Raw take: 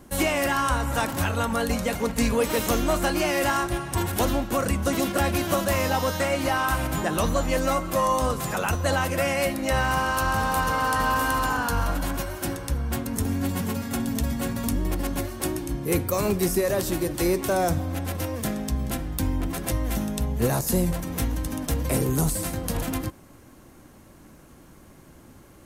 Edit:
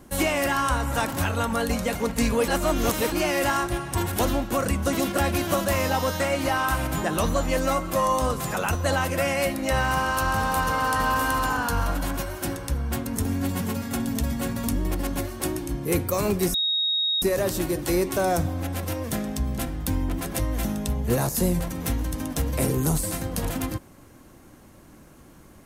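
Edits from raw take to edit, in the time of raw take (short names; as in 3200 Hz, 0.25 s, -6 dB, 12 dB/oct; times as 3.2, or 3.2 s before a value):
2.48–3.12 reverse
16.54 add tone 3760 Hz -21 dBFS 0.68 s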